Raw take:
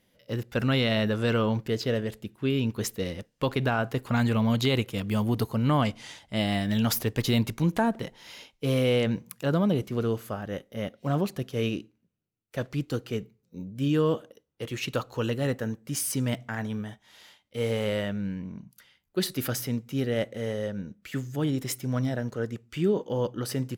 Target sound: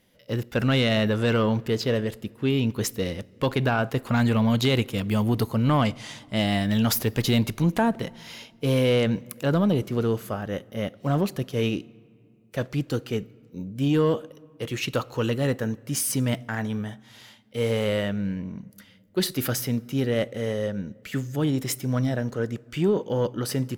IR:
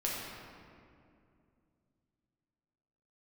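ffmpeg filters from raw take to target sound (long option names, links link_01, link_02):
-filter_complex "[0:a]asoftclip=type=tanh:threshold=-16dB,asplit=2[link_01][link_02];[1:a]atrim=start_sample=2205,highshelf=frequency=10000:gain=8.5[link_03];[link_02][link_03]afir=irnorm=-1:irlink=0,volume=-28dB[link_04];[link_01][link_04]amix=inputs=2:normalize=0,volume=3.5dB"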